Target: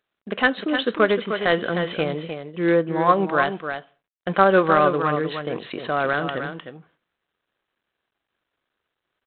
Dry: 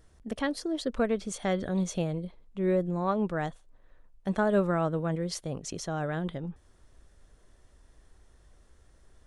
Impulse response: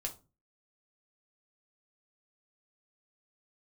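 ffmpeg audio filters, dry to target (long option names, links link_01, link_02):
-filter_complex "[0:a]asetrate=40440,aresample=44100,atempo=1.09051,highpass=220,equalizer=frequency=1700:width_type=o:width=2.6:gain=10,agate=range=-19dB:threshold=-56dB:ratio=16:detection=peak,bandreject=frequency=890:width=12,aecho=1:1:306:0.398,asplit=2[link_01][link_02];[1:a]atrim=start_sample=2205,asetrate=29106,aresample=44100,lowshelf=frequency=470:gain=-5[link_03];[link_02][link_03]afir=irnorm=-1:irlink=0,volume=-14.5dB[link_04];[link_01][link_04]amix=inputs=2:normalize=0,volume=5.5dB" -ar 8000 -c:a adpcm_g726 -b:a 32k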